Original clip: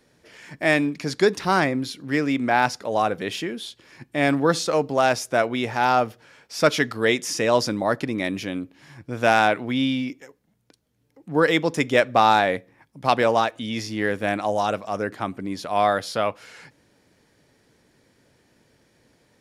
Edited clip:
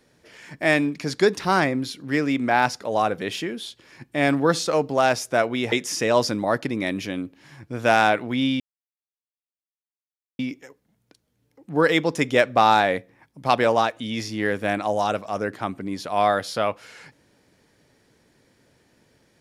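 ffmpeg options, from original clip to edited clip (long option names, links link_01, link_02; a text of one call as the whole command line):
ffmpeg -i in.wav -filter_complex "[0:a]asplit=3[link_01][link_02][link_03];[link_01]atrim=end=5.722[link_04];[link_02]atrim=start=7.098:end=9.98,asetpts=PTS-STARTPTS,afade=type=out:start_time=2.878:duration=0.004:curve=hsin,apad=pad_dur=1.79[link_05];[link_03]atrim=start=9.98,asetpts=PTS-STARTPTS,afade=type=in:duration=0.004:curve=hsin[link_06];[link_05][link_06]concat=n=2:v=0:a=1[link_07];[link_04][link_07]acrossfade=duration=0.004:curve1=hsin:curve2=hsin" out.wav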